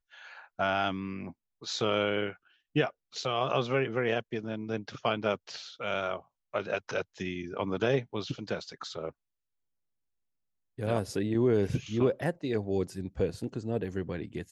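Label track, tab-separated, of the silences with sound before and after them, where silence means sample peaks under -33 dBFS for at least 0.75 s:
9.090000	10.790000	silence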